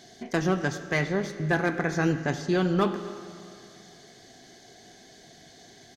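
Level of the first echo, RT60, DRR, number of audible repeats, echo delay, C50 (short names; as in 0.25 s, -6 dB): -21.0 dB, 2.4 s, 9.5 dB, 1, 0.261 s, 10.5 dB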